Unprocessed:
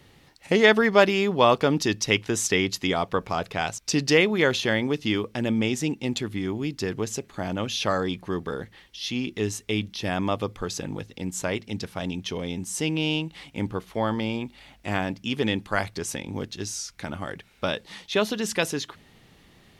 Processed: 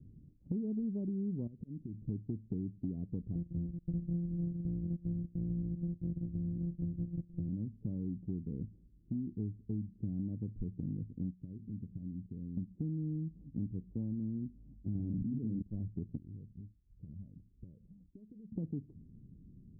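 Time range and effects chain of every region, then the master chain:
1.47–2.09 median filter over 41 samples + auto swell 0.693 s + compressor 12:1, threshold -36 dBFS
3.35–7.49 sample sorter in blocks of 256 samples + dispersion highs, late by 46 ms, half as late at 2300 Hz
11.3–12.57 compressor 8:1, threshold -37 dBFS + bell 1500 Hz -13.5 dB 1.4 oct
14.95–15.62 running mean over 26 samples + doubler 45 ms -5.5 dB + fast leveller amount 100%
16.17–18.52 compressor, threshold -39 dBFS + cascading flanger rising 1.5 Hz
whole clip: inverse Chebyshev low-pass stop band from 1500 Hz, stop band 80 dB; compressor, threshold -37 dBFS; gain +2.5 dB

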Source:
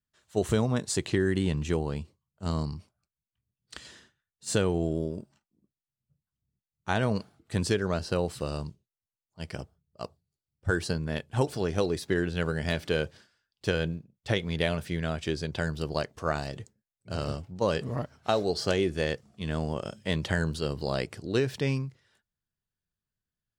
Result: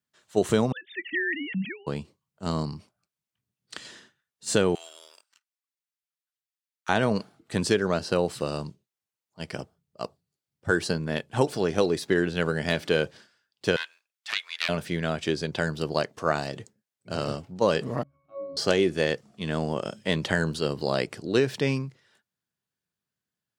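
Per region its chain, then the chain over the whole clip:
0.72–1.87 sine-wave speech + EQ curve 210 Hz 0 dB, 460 Hz -24 dB, 1200 Hz -27 dB, 1800 Hz +6 dB, 6000 Hz -5 dB
4.75–6.89 HPF 1300 Hz 24 dB/oct + sample leveller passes 2
13.76–14.69 HPF 1200 Hz 24 dB/oct + Doppler distortion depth 0.14 ms
18.03–18.57 transient shaper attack -10 dB, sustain +10 dB + octave resonator C#, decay 0.79 s
whole clip: HPF 160 Hz 12 dB/oct; high shelf 9800 Hz -3.5 dB; gain +4.5 dB

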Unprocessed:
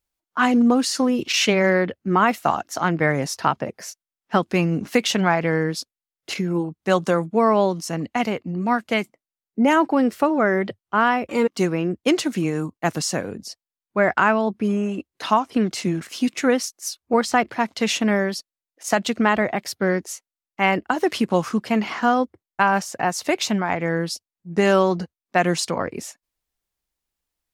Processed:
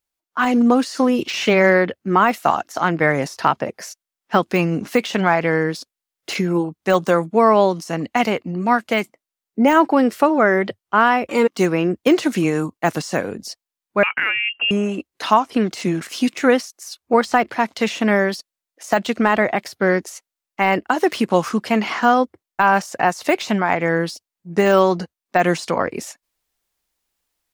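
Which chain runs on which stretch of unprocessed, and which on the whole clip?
14.03–14.71 compressor 1.5:1, threshold -31 dBFS + inverted band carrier 3000 Hz
whole clip: de-esser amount 75%; low shelf 220 Hz -7.5 dB; AGC gain up to 8 dB

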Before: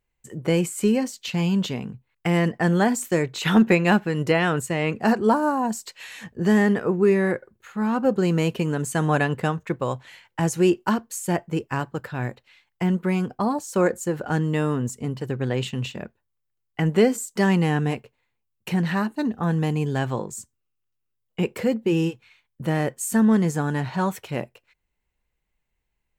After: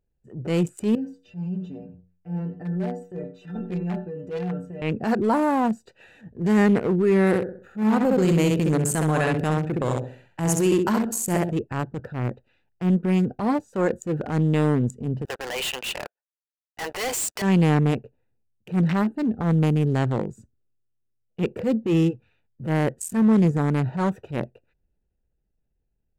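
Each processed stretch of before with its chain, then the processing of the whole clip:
0.95–4.82 metallic resonator 88 Hz, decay 0.44 s, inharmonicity 0.008 + echo 89 ms -15.5 dB
7.27–11.51 high shelf 6500 Hz +8.5 dB + feedback echo 65 ms, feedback 39%, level -4 dB
15.25–17.42 HPF 760 Hz 24 dB/oct + sample leveller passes 5 + hard clip -24.5 dBFS
whole clip: Wiener smoothing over 41 samples; limiter -15.5 dBFS; transient shaper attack -8 dB, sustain +3 dB; gain +4 dB

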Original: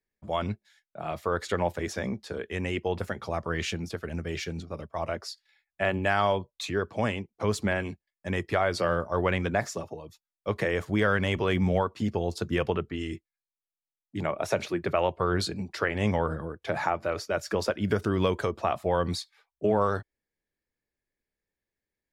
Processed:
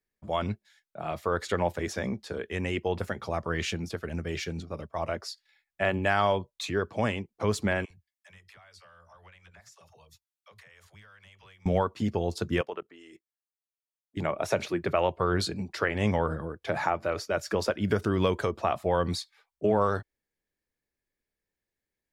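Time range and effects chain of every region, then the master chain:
7.85–11.66 passive tone stack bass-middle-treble 10-0-10 + compressor 12:1, threshold -50 dBFS + dispersion lows, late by 56 ms, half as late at 380 Hz
12.61–14.17 HPF 440 Hz + bell 2900 Hz -3.5 dB 1.7 oct + level quantiser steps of 17 dB
whole clip: dry

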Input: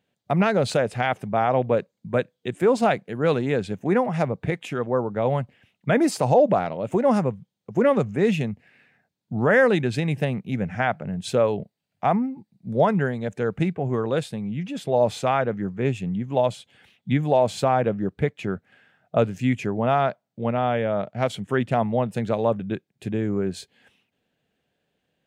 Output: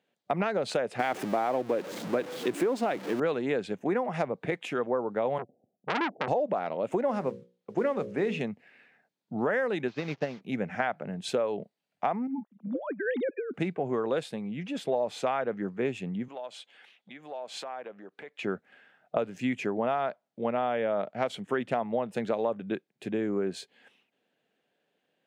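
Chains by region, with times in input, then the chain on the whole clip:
0.99–3.2 zero-crossing step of -29.5 dBFS + bell 310 Hz +9 dB 0.47 oct
5.38–6.28 steep low-pass 770 Hz 96 dB/oct + dynamic EQ 200 Hz, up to +6 dB, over -35 dBFS, Q 1.5 + core saturation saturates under 2200 Hz
7.08–8.41 notches 60/120/180/240/300/360/420/480/540/600 Hz + modulation noise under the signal 30 dB + air absorption 60 m
9.88–10.41 delta modulation 32 kbps, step -34 dBFS + short-mantissa float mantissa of 6-bit + upward expander 2.5:1, over -35 dBFS
12.27–13.54 sine-wave speech + negative-ratio compressor -31 dBFS
16.28–18.43 compressor 8:1, threshold -32 dBFS + weighting filter A
whole clip: HPF 270 Hz 12 dB/oct; high shelf 5600 Hz -8 dB; compressor 10:1, threshold -24 dBFS

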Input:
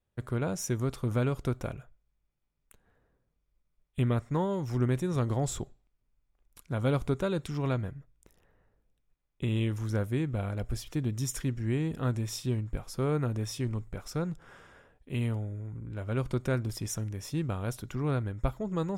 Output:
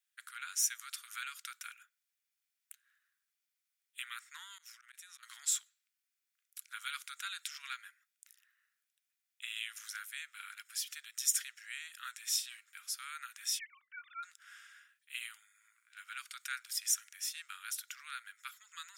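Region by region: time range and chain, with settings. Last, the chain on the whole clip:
4.58–5.23 HPF 650 Hz 24 dB/oct + auto swell 0.116 s + compressor 2.5:1, threshold -56 dBFS
13.59–14.23 sine-wave speech + LPF 2500 Hz
whole clip: steep high-pass 1400 Hz 48 dB/oct; high shelf 4100 Hz +8.5 dB

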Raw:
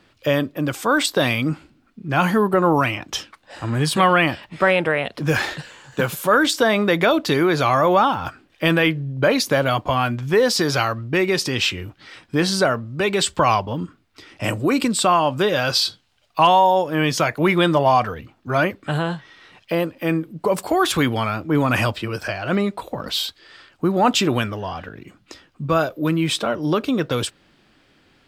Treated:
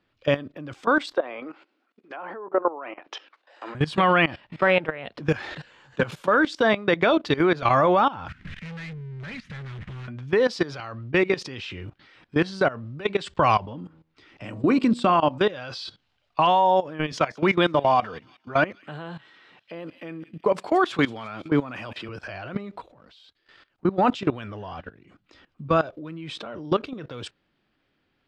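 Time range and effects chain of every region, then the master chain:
1.15–3.75 HPF 380 Hz 24 dB/oct + treble ducked by the level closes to 1100 Hz, closed at -18.5 dBFS
8.28–10.08 delta modulation 64 kbps, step -21.5 dBFS + EQ curve 190 Hz 0 dB, 310 Hz -24 dB, 840 Hz -25 dB, 1900 Hz -4 dB, 4600 Hz -18 dB + hard clip -30 dBFS
13.64–15.38 de-hum 80.29 Hz, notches 14 + dynamic EQ 240 Hz, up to +7 dB, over -34 dBFS, Q 1.8
17.12–22.09 HPF 150 Hz + thin delay 0.177 s, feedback 49%, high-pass 3300 Hz, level -11 dB
22.92–23.85 G.711 law mismatch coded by A + compressor 5:1, threshold -40 dBFS
whole clip: LPF 4100 Hz 12 dB/oct; level quantiser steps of 18 dB

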